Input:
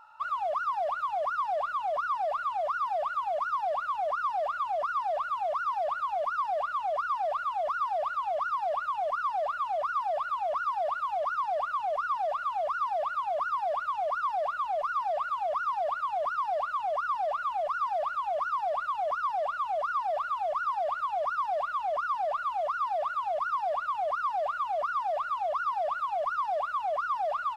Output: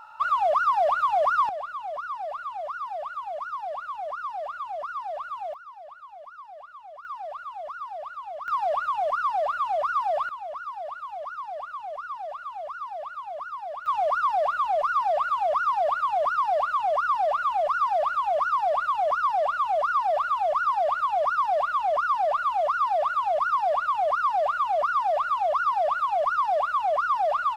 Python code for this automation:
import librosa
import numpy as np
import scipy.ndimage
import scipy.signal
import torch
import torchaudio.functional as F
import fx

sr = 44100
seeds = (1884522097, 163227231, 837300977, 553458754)

y = fx.gain(x, sr, db=fx.steps((0.0, 8.0), (1.49, -3.0), (5.54, -14.0), (7.05, -6.0), (8.48, 4.5), (10.29, -5.0), (13.86, 6.0)))